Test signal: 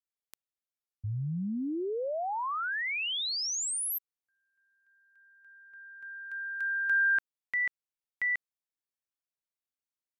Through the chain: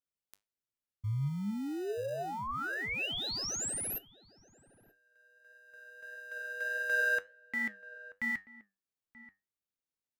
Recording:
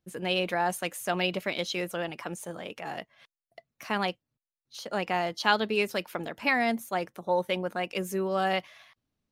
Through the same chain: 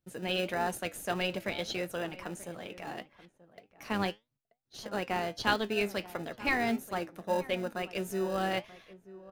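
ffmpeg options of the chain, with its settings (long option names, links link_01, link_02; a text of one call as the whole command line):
ffmpeg -i in.wav -filter_complex "[0:a]asplit=2[link_01][link_02];[link_02]acrusher=samples=40:mix=1:aa=0.000001,volume=-10dB[link_03];[link_01][link_03]amix=inputs=2:normalize=0,flanger=delay=7.2:depth=3.1:regen=75:speed=1.6:shape=sinusoidal,asplit=2[link_04][link_05];[link_05]adelay=932.9,volume=-17dB,highshelf=frequency=4000:gain=-21[link_06];[link_04][link_06]amix=inputs=2:normalize=0" out.wav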